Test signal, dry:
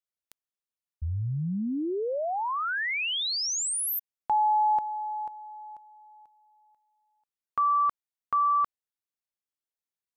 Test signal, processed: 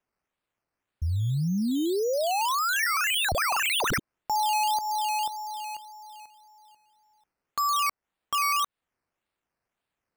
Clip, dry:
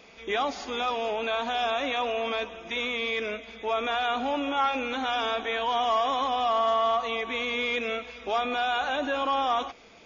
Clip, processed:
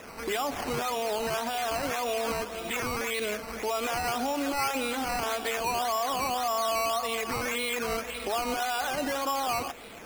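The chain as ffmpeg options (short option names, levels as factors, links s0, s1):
-filter_complex "[0:a]asplit=2[s0][s1];[s1]alimiter=level_in=1.33:limit=0.0631:level=0:latency=1:release=209,volume=0.75,volume=1.41[s2];[s0][s2]amix=inputs=2:normalize=0,acrusher=samples=10:mix=1:aa=0.000001:lfo=1:lforange=6:lforate=1.8,acompressor=threshold=0.0631:ratio=4:attack=0.41:release=227:knee=6:detection=rms"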